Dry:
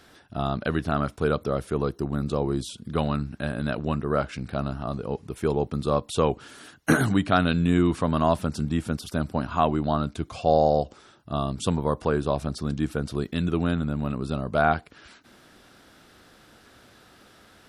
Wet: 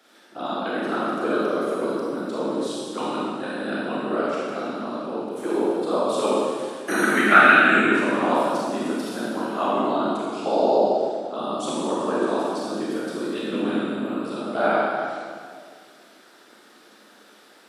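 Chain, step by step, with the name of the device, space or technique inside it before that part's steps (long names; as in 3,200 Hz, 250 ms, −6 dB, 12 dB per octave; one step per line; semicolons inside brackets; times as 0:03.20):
0:07.03–0:07.76: flat-topped bell 1,900 Hz +15 dB 1.2 octaves
whispering ghost (random phases in short frames; high-pass filter 250 Hz 24 dB per octave; convolution reverb RT60 2.0 s, pre-delay 27 ms, DRR −6.5 dB)
level −4.5 dB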